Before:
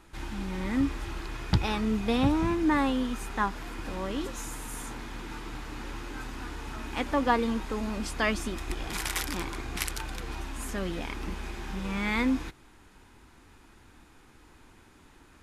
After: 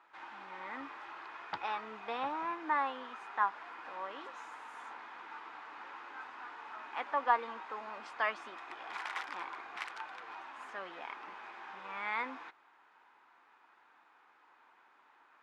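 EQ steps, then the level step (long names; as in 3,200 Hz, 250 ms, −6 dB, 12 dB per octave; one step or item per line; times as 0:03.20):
four-pole ladder band-pass 1,200 Hz, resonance 25%
+8.0 dB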